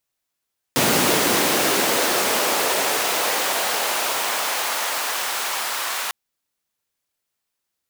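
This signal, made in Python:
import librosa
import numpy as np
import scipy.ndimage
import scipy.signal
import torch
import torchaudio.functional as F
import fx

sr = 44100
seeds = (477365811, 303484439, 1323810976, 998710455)

y = fx.riser_noise(sr, seeds[0], length_s=5.35, colour='pink', kind='highpass', start_hz=200.0, end_hz=1000.0, q=1.2, swell_db=-7, law='linear')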